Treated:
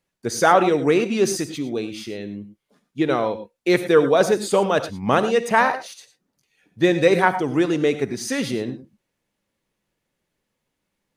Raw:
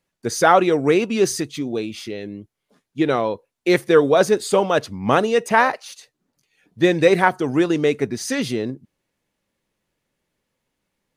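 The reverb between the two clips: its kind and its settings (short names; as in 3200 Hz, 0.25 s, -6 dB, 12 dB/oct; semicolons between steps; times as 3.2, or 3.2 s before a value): non-linear reverb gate 0.13 s rising, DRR 11 dB; gain -1.5 dB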